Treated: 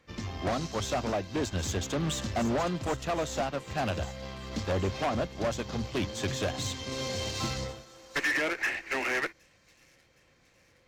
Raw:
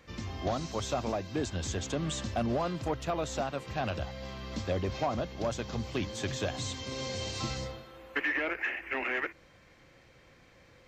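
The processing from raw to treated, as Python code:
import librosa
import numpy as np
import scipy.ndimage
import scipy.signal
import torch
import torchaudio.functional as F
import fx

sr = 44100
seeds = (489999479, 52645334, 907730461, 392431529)

p1 = fx.hum_notches(x, sr, base_hz=60, count=2)
p2 = fx.fold_sine(p1, sr, drive_db=8, ceiling_db=-17.5)
p3 = fx.cheby_harmonics(p2, sr, harmonics=(4,), levels_db=(-21,), full_scale_db=-17.5)
p4 = p3 + fx.echo_wet_highpass(p3, sr, ms=766, feedback_pct=55, hz=4800.0, wet_db=-10.5, dry=0)
p5 = fx.upward_expand(p4, sr, threshold_db=-44.0, expansion=1.5)
y = p5 * librosa.db_to_amplitude(-6.0)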